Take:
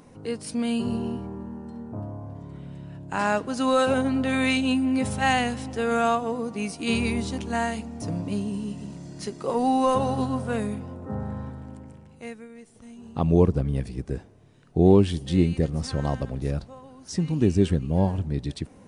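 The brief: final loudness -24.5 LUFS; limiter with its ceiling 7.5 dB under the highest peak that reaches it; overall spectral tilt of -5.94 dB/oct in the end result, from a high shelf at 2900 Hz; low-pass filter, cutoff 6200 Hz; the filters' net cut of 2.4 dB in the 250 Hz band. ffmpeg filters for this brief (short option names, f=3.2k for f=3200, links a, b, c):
-af "lowpass=6.2k,equalizer=f=250:t=o:g=-3,highshelf=f=2.9k:g=-4.5,volume=4dB,alimiter=limit=-11.5dB:level=0:latency=1"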